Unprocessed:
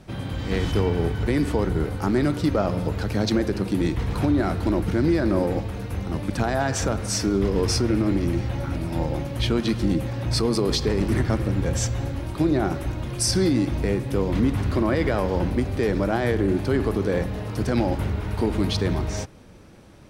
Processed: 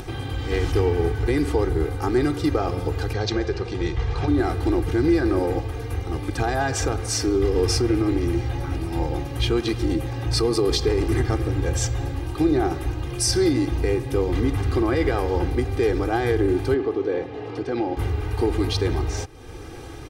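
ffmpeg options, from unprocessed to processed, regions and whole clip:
ffmpeg -i in.wav -filter_complex "[0:a]asettb=1/sr,asplit=3[link_01][link_02][link_03];[link_01]atrim=end=3.134[link_04];[link_02]atrim=start=3.13:end=4.28,asetpts=PTS-STARTPTS,afade=type=in:duration=0.004:curve=qsin,afade=type=out:start_time=1.146:duration=0.004:curve=qsin,lowpass=frequency=6500:width=0.5412,lowpass=frequency=6500:width=1.3066,equalizer=frequency=290:width=5.2:gain=-14.5[link_05];[link_03]atrim=start=4.276[link_06];[link_04][link_05]acrossfade=duration=0.004:curve1=hsin:curve2=qsin[link_07];[link_07][link_06]acrossfade=duration=0.004:curve1=qsin:curve2=hsin,asettb=1/sr,asplit=3[link_08][link_09][link_10];[link_08]atrim=end=16.744[link_11];[link_09]atrim=start=16.74:end=17.97,asetpts=PTS-STARTPTS,afade=type=in:duration=0.004:curve=qsin,afade=type=out:start_time=1.226:duration=0.004:curve=qsin,highpass=210,lowpass=3100,equalizer=frequency=1500:width_type=o:width=1.7:gain=-5.5[link_12];[link_10]atrim=start=17.966[link_13];[link_11][link_12]acrossfade=duration=0.004:curve1=hsin:curve2=qsin[link_14];[link_14][link_13]acrossfade=duration=0.004:curve1=qsin:curve2=hsin,aecho=1:1:2.5:0.85,acompressor=mode=upward:threshold=-24dB:ratio=2.5,volume=-1.5dB" out.wav

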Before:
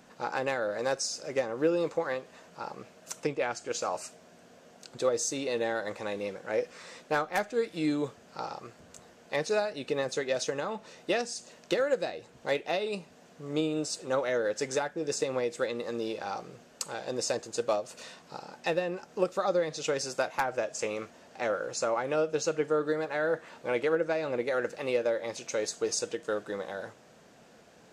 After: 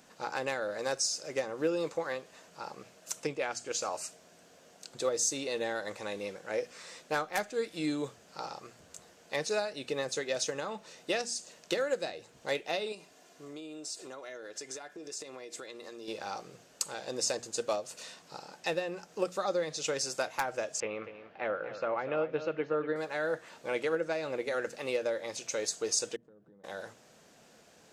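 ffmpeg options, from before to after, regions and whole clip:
ffmpeg -i in.wav -filter_complex "[0:a]asettb=1/sr,asplit=3[link_01][link_02][link_03];[link_01]atrim=end=12.924[link_04];[link_02]atrim=start=12.92:end=16.08,asetpts=PTS-STARTPTS,afade=type=in:duration=0.004:curve=qsin,afade=type=out:start_time=3.156:duration=0.004:curve=qsin,highpass=frequency=190:poles=1,aecho=1:1:2.9:0.42,atrim=end_sample=139356,acompressor=threshold=-38dB:ratio=6:attack=3.2:release=140:knee=1:detection=peak[link_05];[link_03]atrim=start=16.076[link_06];[link_04][link_05]acrossfade=duration=0.004:curve1=hsin:curve2=qsin[link_07];[link_07][link_06]acrossfade=duration=0.004:curve1=qsin:curve2=hsin,asettb=1/sr,asplit=3[link_08][link_09][link_10];[link_08]atrim=end=20.804[link_11];[link_09]atrim=start=20.8:end=22.96,asetpts=PTS-STARTPTS,afade=type=in:duration=0.004:curve=qsin,afade=type=out:start_time=2.156:duration=0.004:curve=qsin,lowpass=frequency=2900:width=0.5412,lowpass=frequency=2900:width=1.3066,aecho=1:1:242:0.266,atrim=end_sample=95256[link_12];[link_10]atrim=start=22.956[link_13];[link_11][link_12]acrossfade=duration=0.004:curve1=hsin:curve2=qsin[link_14];[link_14][link_13]acrossfade=duration=0.004:curve1=qsin:curve2=hsin,asettb=1/sr,asplit=3[link_15][link_16][link_17];[link_15]atrim=end=26.164[link_18];[link_16]atrim=start=26.16:end=26.64,asetpts=PTS-STARTPTS,afade=type=in:duration=0.004:curve=qsin,afade=type=out:start_time=0.476:duration=0.004:curve=qsin,bandpass=frequency=160:width_type=q:width=1.5,acompressor=threshold=-51dB:ratio=10:attack=3.2:release=140:knee=1:detection=peak[link_19];[link_17]atrim=start=26.636[link_20];[link_18][link_19]acrossfade=duration=0.004:curve1=hsin:curve2=qsin[link_21];[link_21][link_20]acrossfade=duration=0.004:curve1=qsin:curve2=hsin,highshelf=frequency=3300:gain=8,bandreject=frequency=60:width_type=h:width=6,bandreject=frequency=120:width_type=h:width=6,bandreject=frequency=180:width_type=h:width=6,bandreject=frequency=240:width_type=h:width=6,volume=-4dB" out.wav

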